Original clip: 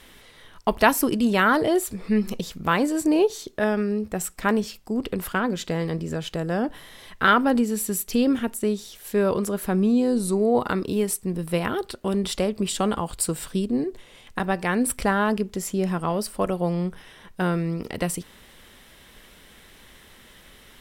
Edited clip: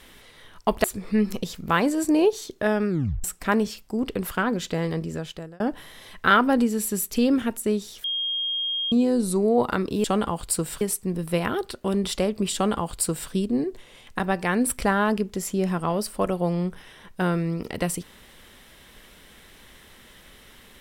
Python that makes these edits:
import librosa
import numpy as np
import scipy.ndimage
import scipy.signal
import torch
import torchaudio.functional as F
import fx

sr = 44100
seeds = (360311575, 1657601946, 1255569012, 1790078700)

y = fx.edit(x, sr, fx.cut(start_s=0.84, length_s=0.97),
    fx.tape_stop(start_s=3.86, length_s=0.35),
    fx.fade_out_span(start_s=5.79, length_s=0.78, curve='qsin'),
    fx.bleep(start_s=9.01, length_s=0.88, hz=3240.0, db=-24.0),
    fx.duplicate(start_s=12.74, length_s=0.77, to_s=11.01), tone=tone)